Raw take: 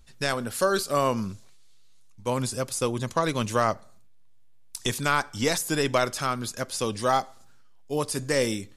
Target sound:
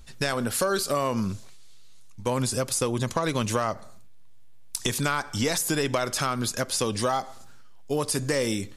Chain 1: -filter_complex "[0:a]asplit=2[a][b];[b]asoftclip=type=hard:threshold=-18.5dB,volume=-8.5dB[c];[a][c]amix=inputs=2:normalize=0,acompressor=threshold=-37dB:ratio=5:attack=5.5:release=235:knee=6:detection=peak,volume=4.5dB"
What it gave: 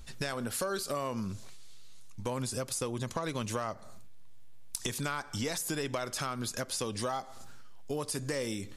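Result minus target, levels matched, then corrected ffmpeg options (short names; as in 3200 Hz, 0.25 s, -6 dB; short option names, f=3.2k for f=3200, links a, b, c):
compressor: peak gain reduction +9 dB
-filter_complex "[0:a]asplit=2[a][b];[b]asoftclip=type=hard:threshold=-18.5dB,volume=-8.5dB[c];[a][c]amix=inputs=2:normalize=0,acompressor=threshold=-26dB:ratio=5:attack=5.5:release=235:knee=6:detection=peak,volume=4.5dB"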